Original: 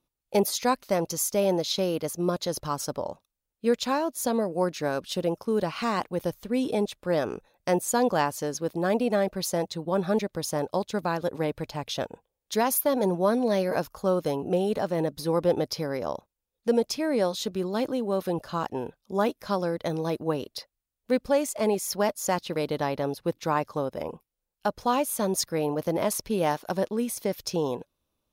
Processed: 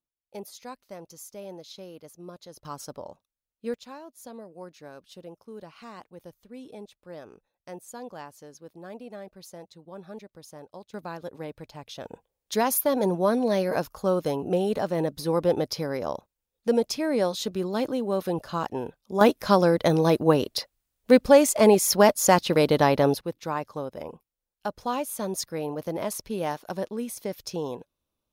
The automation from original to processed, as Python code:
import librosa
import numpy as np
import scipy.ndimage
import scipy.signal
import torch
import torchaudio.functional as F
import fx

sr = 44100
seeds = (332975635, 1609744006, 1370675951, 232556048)

y = fx.gain(x, sr, db=fx.steps((0.0, -16.5), (2.65, -8.0), (3.74, -16.5), (10.94, -9.0), (12.05, 0.5), (19.21, 8.0), (23.21, -4.0)))